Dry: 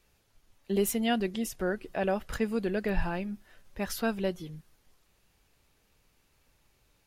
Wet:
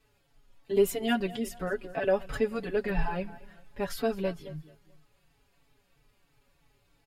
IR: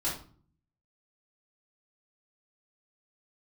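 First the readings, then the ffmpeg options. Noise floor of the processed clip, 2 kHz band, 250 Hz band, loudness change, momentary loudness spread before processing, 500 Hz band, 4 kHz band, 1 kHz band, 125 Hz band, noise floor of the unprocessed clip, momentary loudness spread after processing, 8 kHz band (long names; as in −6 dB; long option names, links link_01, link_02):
−70 dBFS, 0.0 dB, −2.0 dB, +0.5 dB, 14 LU, +3.0 dB, −1.5 dB, 0.0 dB, −1.0 dB, −70 dBFS, 15 LU, −4.5 dB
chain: -filter_complex "[0:a]highshelf=frequency=4800:gain=-7,bandreject=frequency=5900:width=11,aecho=1:1:7.1:0.65,aecho=1:1:218|436|654:0.106|0.036|0.0122,asplit=2[link_01][link_02];[link_02]adelay=4.1,afreqshift=-3[link_03];[link_01][link_03]amix=inputs=2:normalize=1,volume=3dB"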